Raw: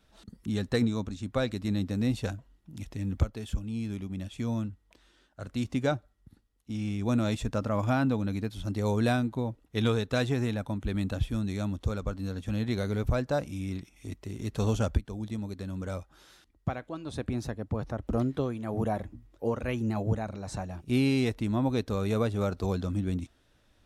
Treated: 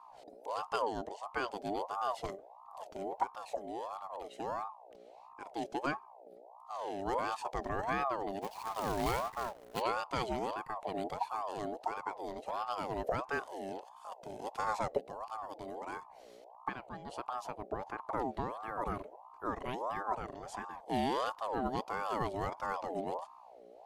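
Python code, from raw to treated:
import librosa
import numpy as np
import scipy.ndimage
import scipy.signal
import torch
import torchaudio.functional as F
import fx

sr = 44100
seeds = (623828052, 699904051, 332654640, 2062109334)

y = fx.add_hum(x, sr, base_hz=60, snr_db=17)
y = fx.quant_companded(y, sr, bits=4, at=(8.41, 9.8), fade=0.02)
y = fx.ring_lfo(y, sr, carrier_hz=740.0, swing_pct=35, hz=1.5)
y = F.gain(torch.from_numpy(y), -5.0).numpy()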